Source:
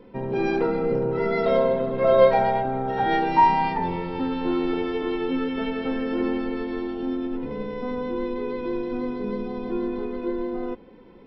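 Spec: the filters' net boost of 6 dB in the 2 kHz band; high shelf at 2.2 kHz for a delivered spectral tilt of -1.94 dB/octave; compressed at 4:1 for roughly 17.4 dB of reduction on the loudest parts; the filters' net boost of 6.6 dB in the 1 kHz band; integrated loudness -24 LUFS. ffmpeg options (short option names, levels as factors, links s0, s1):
-af "equalizer=f=1000:t=o:g=7,equalizer=f=2000:t=o:g=6.5,highshelf=f=2200:g=-3,acompressor=threshold=0.0447:ratio=4,volume=2"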